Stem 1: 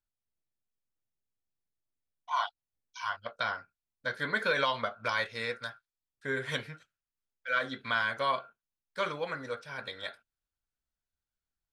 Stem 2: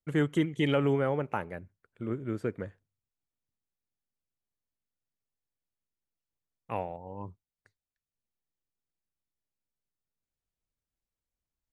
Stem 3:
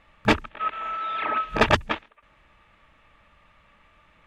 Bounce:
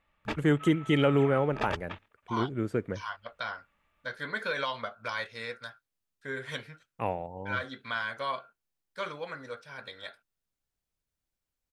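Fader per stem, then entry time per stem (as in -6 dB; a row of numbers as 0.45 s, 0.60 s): -3.5 dB, +2.5 dB, -15.5 dB; 0.00 s, 0.30 s, 0.00 s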